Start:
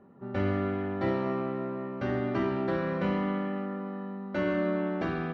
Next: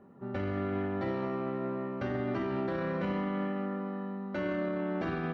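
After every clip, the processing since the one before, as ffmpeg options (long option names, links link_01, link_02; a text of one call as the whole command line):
ffmpeg -i in.wav -af "alimiter=level_in=1dB:limit=-24dB:level=0:latency=1:release=27,volume=-1dB" out.wav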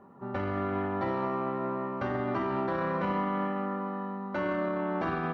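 ffmpeg -i in.wav -af "equalizer=frequency=1000:width_type=o:width=0.96:gain=10" out.wav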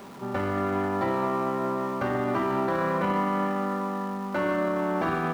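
ffmpeg -i in.wav -af "aeval=exprs='val(0)+0.5*0.00531*sgn(val(0))':channel_layout=same,lowshelf=frequency=88:gain=-6,volume=4dB" out.wav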